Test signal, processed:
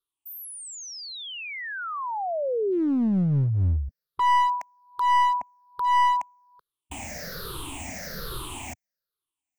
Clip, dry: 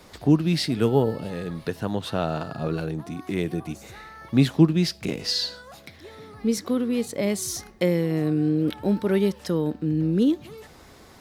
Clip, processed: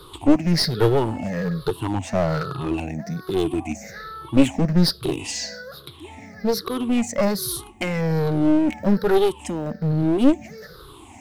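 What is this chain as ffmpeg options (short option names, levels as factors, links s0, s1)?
-af "afftfilt=real='re*pow(10,22/40*sin(2*PI*(0.62*log(max(b,1)*sr/1024/100)/log(2)-(-1.2)*(pts-256)/sr)))':imag='im*pow(10,22/40*sin(2*PI*(0.62*log(max(b,1)*sr/1024/100)/log(2)-(-1.2)*(pts-256)/sr)))':win_size=1024:overlap=0.75,aeval=exprs='clip(val(0),-1,0.0891)':c=same"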